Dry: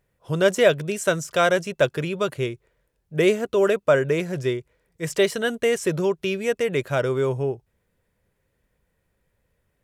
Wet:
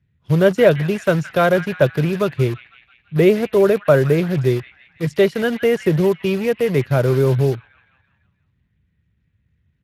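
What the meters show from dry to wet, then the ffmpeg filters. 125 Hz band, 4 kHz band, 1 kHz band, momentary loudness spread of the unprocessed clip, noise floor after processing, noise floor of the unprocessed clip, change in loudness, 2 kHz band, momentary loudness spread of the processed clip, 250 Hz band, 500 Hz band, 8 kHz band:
+11.0 dB, -1.0 dB, +3.0 dB, 10 LU, -66 dBFS, -73 dBFS, +5.5 dB, +1.5 dB, 7 LU, +8.0 dB, +5.0 dB, n/a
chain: -filter_complex "[0:a]aemphasis=mode=reproduction:type=bsi,acrossover=split=300|1400|3100[a][b][c][d];[b]acrusher=bits=5:mix=0:aa=0.000001[e];[c]asplit=8[f][g][h][i][j][k][l][m];[g]adelay=167,afreqshift=34,volume=-6dB[n];[h]adelay=334,afreqshift=68,volume=-10.9dB[o];[i]adelay=501,afreqshift=102,volume=-15.8dB[p];[j]adelay=668,afreqshift=136,volume=-20.6dB[q];[k]adelay=835,afreqshift=170,volume=-25.5dB[r];[l]adelay=1002,afreqshift=204,volume=-30.4dB[s];[m]adelay=1169,afreqshift=238,volume=-35.3dB[t];[f][n][o][p][q][r][s][t]amix=inputs=8:normalize=0[u];[a][e][u][d]amix=inputs=4:normalize=0,volume=2.5dB" -ar 32000 -c:a libspeex -b:a 24k

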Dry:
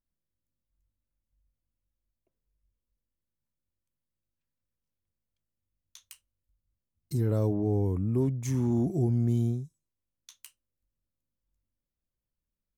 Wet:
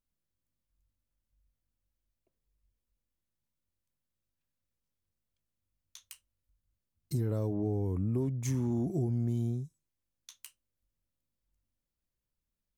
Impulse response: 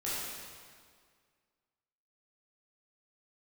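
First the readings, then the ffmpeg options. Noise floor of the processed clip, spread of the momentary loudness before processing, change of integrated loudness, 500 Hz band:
under -85 dBFS, 6 LU, -4.5 dB, -5.0 dB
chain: -af "acompressor=threshold=-27dB:ratio=6"

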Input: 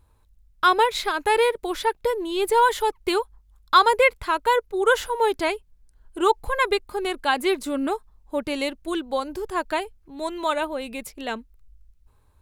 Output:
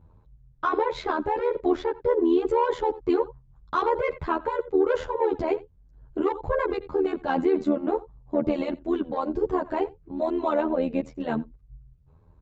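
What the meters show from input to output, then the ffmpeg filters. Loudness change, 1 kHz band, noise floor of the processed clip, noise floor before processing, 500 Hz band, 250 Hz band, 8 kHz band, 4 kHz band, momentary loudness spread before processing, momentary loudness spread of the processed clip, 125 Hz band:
-3.0 dB, -6.5 dB, -58 dBFS, -60 dBFS, -0.5 dB, +3.5 dB, under -20 dB, -16.0 dB, 13 LU, 7 LU, n/a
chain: -filter_complex "[0:a]highshelf=f=2.9k:g=-8.5,asplit=2[a][b];[b]adelay=87.46,volume=-24dB,highshelf=f=4k:g=-1.97[c];[a][c]amix=inputs=2:normalize=0,aresample=16000,aresample=44100,tiltshelf=f=1.2k:g=8,acontrast=65,alimiter=limit=-11.5dB:level=0:latency=1:release=13,highpass=46,tremolo=f=80:d=0.75,asplit=2[d][e];[e]adelay=9.7,afreqshift=1.4[f];[d][f]amix=inputs=2:normalize=1"

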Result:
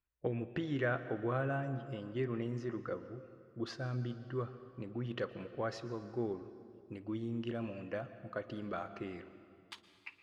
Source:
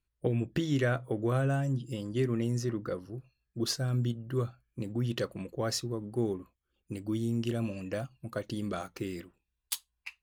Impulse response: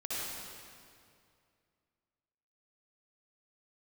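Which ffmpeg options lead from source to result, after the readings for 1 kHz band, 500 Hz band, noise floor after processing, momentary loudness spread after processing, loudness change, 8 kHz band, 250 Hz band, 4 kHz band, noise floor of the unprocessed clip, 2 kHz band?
-2.0 dB, -4.5 dB, -65 dBFS, 15 LU, -6.5 dB, -22.0 dB, -7.0 dB, -12.0 dB, -83 dBFS, -2.5 dB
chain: -filter_complex "[0:a]lowpass=2k,lowshelf=f=440:g=-10,asplit=2[a][b];[1:a]atrim=start_sample=2205,adelay=55[c];[b][c]afir=irnorm=-1:irlink=0,volume=-16dB[d];[a][d]amix=inputs=2:normalize=0"

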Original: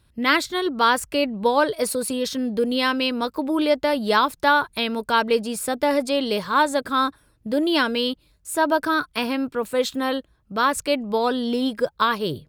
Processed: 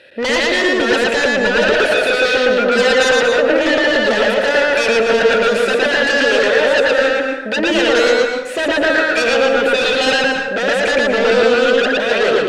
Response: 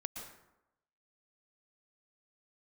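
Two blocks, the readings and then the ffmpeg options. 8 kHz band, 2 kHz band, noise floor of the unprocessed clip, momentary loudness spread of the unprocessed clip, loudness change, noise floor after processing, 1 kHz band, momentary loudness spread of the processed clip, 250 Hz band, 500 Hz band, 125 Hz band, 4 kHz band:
+4.5 dB, +12.5 dB, -62 dBFS, 6 LU, +8.5 dB, -21 dBFS, +1.5 dB, 4 LU, +3.0 dB, +11.0 dB, n/a, +8.5 dB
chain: -filter_complex "[0:a]asplit=2[a][b];[b]highpass=f=720:p=1,volume=34dB,asoftclip=type=tanh:threshold=-4.5dB[c];[a][c]amix=inputs=2:normalize=0,lowpass=f=4.7k:p=1,volume=-6dB,asplit=3[d][e][f];[d]bandpass=f=530:t=q:w=8,volume=0dB[g];[e]bandpass=f=1.84k:t=q:w=8,volume=-6dB[h];[f]bandpass=f=2.48k:t=q:w=8,volume=-9dB[i];[g][h][i]amix=inputs=3:normalize=0,aeval=exprs='0.422*sin(PI/2*5.01*val(0)/0.422)':c=same,asplit=2[j][k];[1:a]atrim=start_sample=2205,highshelf=f=7.4k:g=-10.5,adelay=114[l];[k][l]afir=irnorm=-1:irlink=0,volume=4.5dB[m];[j][m]amix=inputs=2:normalize=0,volume=-7dB"

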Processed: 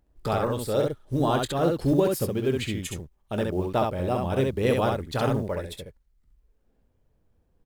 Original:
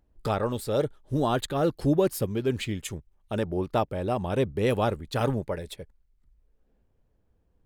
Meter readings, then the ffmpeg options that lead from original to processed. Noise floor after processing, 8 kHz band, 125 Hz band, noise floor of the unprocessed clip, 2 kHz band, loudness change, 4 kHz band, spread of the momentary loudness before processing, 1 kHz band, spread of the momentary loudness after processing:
-68 dBFS, +2.0 dB, +1.5 dB, -70 dBFS, +2.0 dB, +1.5 dB, +2.0 dB, 10 LU, +2.0 dB, 10 LU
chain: -af "acrusher=bits=9:mode=log:mix=0:aa=0.000001,aecho=1:1:23|67:0.211|0.668"

